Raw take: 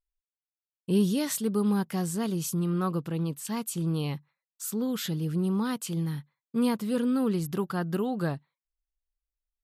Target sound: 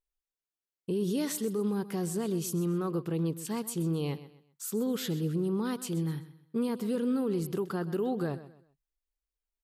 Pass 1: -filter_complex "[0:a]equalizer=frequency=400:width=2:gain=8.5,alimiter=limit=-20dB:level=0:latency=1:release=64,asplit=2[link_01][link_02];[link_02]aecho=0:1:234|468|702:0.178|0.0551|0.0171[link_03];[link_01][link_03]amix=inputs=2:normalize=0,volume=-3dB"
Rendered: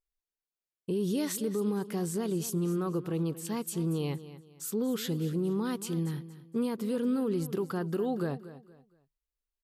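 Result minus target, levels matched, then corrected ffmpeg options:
echo 106 ms late
-filter_complex "[0:a]equalizer=frequency=400:width=2:gain=8.5,alimiter=limit=-20dB:level=0:latency=1:release=64,asplit=2[link_01][link_02];[link_02]aecho=0:1:128|256|384:0.178|0.0551|0.0171[link_03];[link_01][link_03]amix=inputs=2:normalize=0,volume=-3dB"

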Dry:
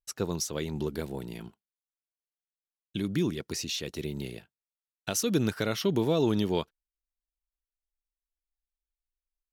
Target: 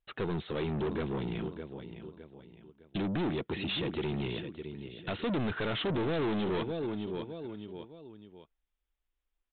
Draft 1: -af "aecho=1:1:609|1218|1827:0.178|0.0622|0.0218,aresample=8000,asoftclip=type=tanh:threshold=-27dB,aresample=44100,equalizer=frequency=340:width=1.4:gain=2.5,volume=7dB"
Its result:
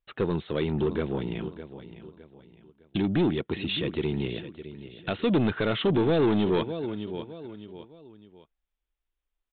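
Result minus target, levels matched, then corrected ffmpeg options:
soft clipping: distortion −6 dB
-af "aecho=1:1:609|1218|1827:0.178|0.0622|0.0218,aresample=8000,asoftclip=type=tanh:threshold=-37.5dB,aresample=44100,equalizer=frequency=340:width=1.4:gain=2.5,volume=7dB"

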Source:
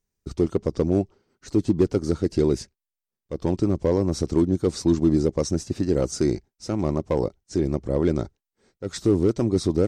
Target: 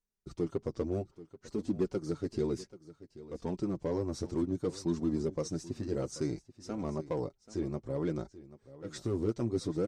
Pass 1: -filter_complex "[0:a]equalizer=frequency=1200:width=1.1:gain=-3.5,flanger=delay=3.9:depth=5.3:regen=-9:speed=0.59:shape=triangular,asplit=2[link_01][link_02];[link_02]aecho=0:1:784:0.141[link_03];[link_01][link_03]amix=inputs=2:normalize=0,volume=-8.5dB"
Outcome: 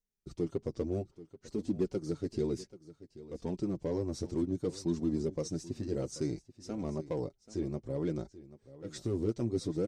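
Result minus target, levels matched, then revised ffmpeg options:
1,000 Hz band −4.0 dB
-filter_complex "[0:a]equalizer=frequency=1200:width=1.1:gain=2.5,flanger=delay=3.9:depth=5.3:regen=-9:speed=0.59:shape=triangular,asplit=2[link_01][link_02];[link_02]aecho=0:1:784:0.141[link_03];[link_01][link_03]amix=inputs=2:normalize=0,volume=-8.5dB"

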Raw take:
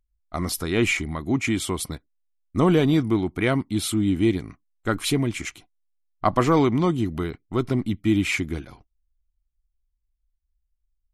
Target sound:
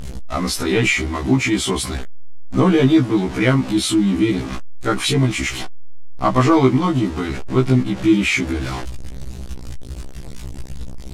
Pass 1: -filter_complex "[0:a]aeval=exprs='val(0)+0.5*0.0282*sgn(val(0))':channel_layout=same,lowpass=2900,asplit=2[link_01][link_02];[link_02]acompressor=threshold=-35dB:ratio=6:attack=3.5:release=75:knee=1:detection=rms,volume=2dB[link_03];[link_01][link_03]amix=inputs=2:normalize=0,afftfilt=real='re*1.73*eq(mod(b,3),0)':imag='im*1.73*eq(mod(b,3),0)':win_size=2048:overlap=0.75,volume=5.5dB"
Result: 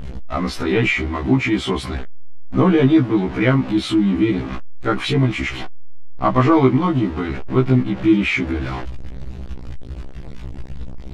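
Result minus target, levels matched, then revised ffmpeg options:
8,000 Hz band −13.5 dB
-filter_complex "[0:a]aeval=exprs='val(0)+0.5*0.0282*sgn(val(0))':channel_layout=same,lowpass=8100,asplit=2[link_01][link_02];[link_02]acompressor=threshold=-35dB:ratio=6:attack=3.5:release=75:knee=1:detection=rms,volume=2dB[link_03];[link_01][link_03]amix=inputs=2:normalize=0,afftfilt=real='re*1.73*eq(mod(b,3),0)':imag='im*1.73*eq(mod(b,3),0)':win_size=2048:overlap=0.75,volume=5.5dB"

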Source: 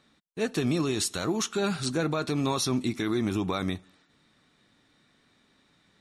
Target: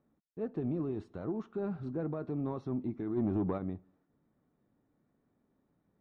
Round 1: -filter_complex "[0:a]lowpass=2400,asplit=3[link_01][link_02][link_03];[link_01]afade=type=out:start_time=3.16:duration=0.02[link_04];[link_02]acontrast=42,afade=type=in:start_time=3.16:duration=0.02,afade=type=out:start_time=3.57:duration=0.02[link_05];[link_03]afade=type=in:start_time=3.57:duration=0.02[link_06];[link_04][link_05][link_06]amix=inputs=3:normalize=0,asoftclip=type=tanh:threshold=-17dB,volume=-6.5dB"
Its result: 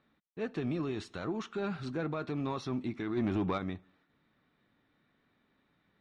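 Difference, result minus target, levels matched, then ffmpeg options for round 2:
2,000 Hz band +13.0 dB
-filter_complex "[0:a]lowpass=710,asplit=3[link_01][link_02][link_03];[link_01]afade=type=out:start_time=3.16:duration=0.02[link_04];[link_02]acontrast=42,afade=type=in:start_time=3.16:duration=0.02,afade=type=out:start_time=3.57:duration=0.02[link_05];[link_03]afade=type=in:start_time=3.57:duration=0.02[link_06];[link_04][link_05][link_06]amix=inputs=3:normalize=0,asoftclip=type=tanh:threshold=-17dB,volume=-6.5dB"

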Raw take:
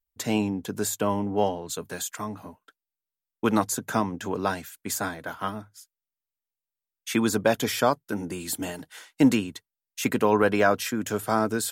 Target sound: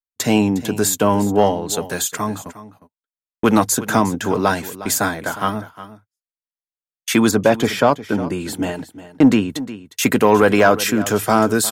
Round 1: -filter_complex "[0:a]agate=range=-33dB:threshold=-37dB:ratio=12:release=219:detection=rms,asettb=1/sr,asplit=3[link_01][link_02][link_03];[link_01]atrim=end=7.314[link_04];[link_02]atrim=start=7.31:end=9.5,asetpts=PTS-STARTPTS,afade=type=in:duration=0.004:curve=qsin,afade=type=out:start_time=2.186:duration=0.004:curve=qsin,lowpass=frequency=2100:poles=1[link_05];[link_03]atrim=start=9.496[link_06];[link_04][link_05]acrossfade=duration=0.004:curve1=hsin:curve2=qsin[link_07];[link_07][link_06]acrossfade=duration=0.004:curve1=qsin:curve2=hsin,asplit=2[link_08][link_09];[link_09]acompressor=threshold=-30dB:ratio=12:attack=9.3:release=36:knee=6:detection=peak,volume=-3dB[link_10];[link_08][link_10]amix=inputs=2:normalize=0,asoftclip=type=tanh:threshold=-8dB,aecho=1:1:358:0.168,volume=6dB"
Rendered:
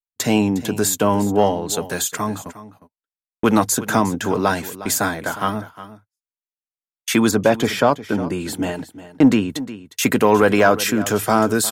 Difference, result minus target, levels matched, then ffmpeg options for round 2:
downward compressor: peak gain reduction +7.5 dB
-filter_complex "[0:a]agate=range=-33dB:threshold=-37dB:ratio=12:release=219:detection=rms,asettb=1/sr,asplit=3[link_01][link_02][link_03];[link_01]atrim=end=7.314[link_04];[link_02]atrim=start=7.31:end=9.5,asetpts=PTS-STARTPTS,afade=type=in:duration=0.004:curve=qsin,afade=type=out:start_time=2.186:duration=0.004:curve=qsin,lowpass=frequency=2100:poles=1[link_05];[link_03]atrim=start=9.496[link_06];[link_04][link_05]acrossfade=duration=0.004:curve1=hsin:curve2=qsin[link_07];[link_07][link_06]acrossfade=duration=0.004:curve1=qsin:curve2=hsin,asplit=2[link_08][link_09];[link_09]acompressor=threshold=-22dB:ratio=12:attack=9.3:release=36:knee=6:detection=peak,volume=-3dB[link_10];[link_08][link_10]amix=inputs=2:normalize=0,asoftclip=type=tanh:threshold=-8dB,aecho=1:1:358:0.168,volume=6dB"

